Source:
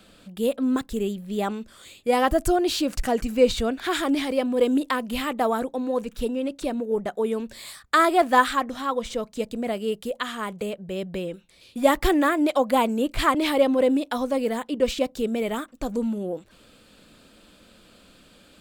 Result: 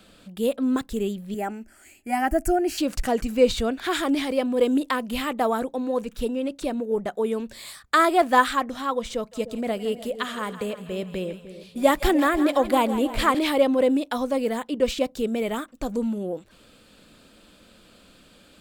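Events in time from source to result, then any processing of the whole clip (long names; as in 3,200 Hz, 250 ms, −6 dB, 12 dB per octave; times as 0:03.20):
0:01.34–0:02.78: phaser with its sweep stopped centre 740 Hz, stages 8
0:09.15–0:13.39: echo with a time of its own for lows and highs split 660 Hz, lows 301 ms, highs 163 ms, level −12.5 dB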